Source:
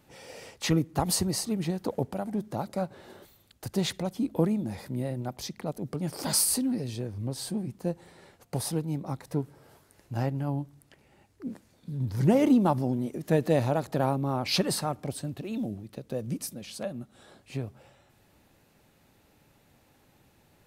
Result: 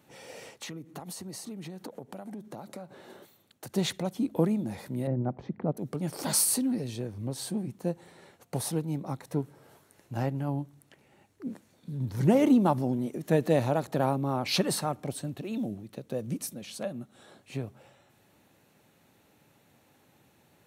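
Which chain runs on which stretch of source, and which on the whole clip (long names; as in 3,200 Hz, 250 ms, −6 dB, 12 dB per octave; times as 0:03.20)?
0:00.49–0:03.73: high-pass filter 120 Hz + downward compressor 16 to 1, threshold −36 dBFS + one half of a high-frequency compander decoder only
0:05.07–0:05.77: Chebyshev low-pass filter 1,700 Hz + tilt shelving filter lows +7.5 dB, about 930 Hz
whole clip: high-pass filter 110 Hz; notch filter 4,900 Hz, Q 11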